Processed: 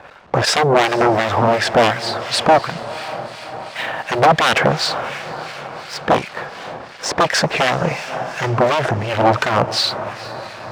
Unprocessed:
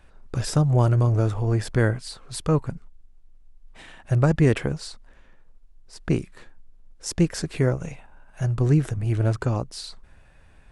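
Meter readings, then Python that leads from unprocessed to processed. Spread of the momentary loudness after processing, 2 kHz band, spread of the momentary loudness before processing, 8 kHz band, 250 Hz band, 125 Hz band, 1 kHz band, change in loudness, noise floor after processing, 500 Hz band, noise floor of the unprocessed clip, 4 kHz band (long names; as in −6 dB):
15 LU, +16.5 dB, 16 LU, +9.0 dB, +2.0 dB, −4.0 dB, +20.0 dB, +6.5 dB, −36 dBFS, +11.0 dB, −53 dBFS, +18.0 dB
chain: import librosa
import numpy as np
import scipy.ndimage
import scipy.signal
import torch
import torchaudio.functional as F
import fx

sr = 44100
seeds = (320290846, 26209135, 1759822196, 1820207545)

p1 = fx.dmg_noise_colour(x, sr, seeds[0], colour='brown', level_db=-58.0)
p2 = 10.0 ** (-20.5 / 20.0) * np.tanh(p1 / 10.0 ** (-20.5 / 20.0))
p3 = p1 + (p2 * librosa.db_to_amplitude(-11.5))
p4 = scipy.signal.sosfilt(scipy.signal.butter(2, 3500.0, 'lowpass', fs=sr, output='sos'), p3)
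p5 = fx.fold_sine(p4, sr, drive_db=15, ceiling_db=-6.0)
p6 = fx.low_shelf_res(p5, sr, hz=450.0, db=-8.5, q=1.5)
p7 = p6 + fx.echo_diffused(p6, sr, ms=532, feedback_pct=63, wet_db=-15.0, dry=0)
p8 = fx.leveller(p7, sr, passes=2)
p9 = scipy.signal.sosfilt(scipy.signal.butter(2, 150.0, 'highpass', fs=sr, output='sos'), p8)
p10 = fx.harmonic_tremolo(p9, sr, hz=2.8, depth_pct=70, crossover_hz=1500.0)
p11 = fx.doppler_dist(p10, sr, depth_ms=0.19)
y = p11 * librosa.db_to_amplitude(-2.5)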